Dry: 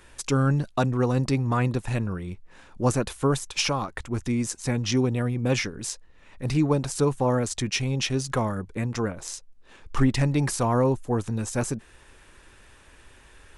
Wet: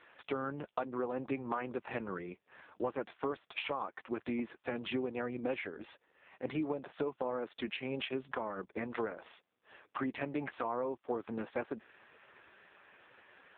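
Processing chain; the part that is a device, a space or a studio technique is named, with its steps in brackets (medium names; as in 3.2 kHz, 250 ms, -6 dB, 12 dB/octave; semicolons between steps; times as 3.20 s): 4.39–5.91 s: gate -36 dBFS, range -27 dB; high-pass 130 Hz 12 dB/octave; voicemail (band-pass 360–3100 Hz; compression 10:1, threshold -32 dBFS, peak gain reduction 12.5 dB; trim +1 dB; AMR-NB 5.15 kbps 8 kHz)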